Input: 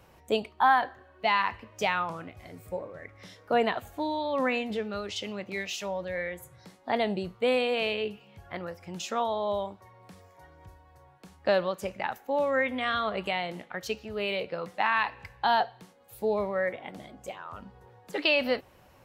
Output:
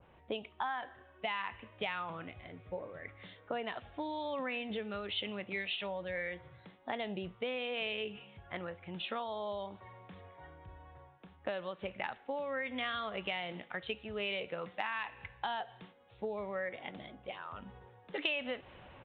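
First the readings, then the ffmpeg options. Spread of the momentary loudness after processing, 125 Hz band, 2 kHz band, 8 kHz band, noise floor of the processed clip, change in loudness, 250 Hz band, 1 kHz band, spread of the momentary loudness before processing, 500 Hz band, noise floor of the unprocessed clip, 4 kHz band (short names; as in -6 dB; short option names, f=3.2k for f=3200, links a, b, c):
17 LU, -6.5 dB, -8.0 dB, under -30 dB, -62 dBFS, -10.0 dB, -9.0 dB, -12.0 dB, 16 LU, -10.5 dB, -58 dBFS, -6.0 dB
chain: -af "areverse,acompressor=mode=upward:threshold=-41dB:ratio=2.5,areverse,aresample=8000,aresample=44100,acompressor=threshold=-30dB:ratio=12,adynamicequalizer=threshold=0.00355:dfrequency=1800:dqfactor=0.7:tfrequency=1800:tqfactor=0.7:attack=5:release=100:ratio=0.375:range=3:mode=boostabove:tftype=highshelf,volume=-4.5dB"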